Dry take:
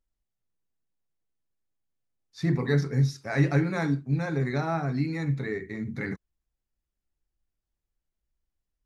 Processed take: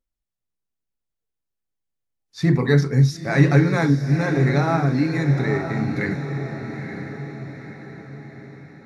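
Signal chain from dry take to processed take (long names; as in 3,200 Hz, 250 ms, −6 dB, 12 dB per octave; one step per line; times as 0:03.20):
noise reduction from a noise print of the clip's start 10 dB
on a send: feedback delay with all-pass diffusion 923 ms, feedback 50%, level −8 dB
on the sum: level +7.5 dB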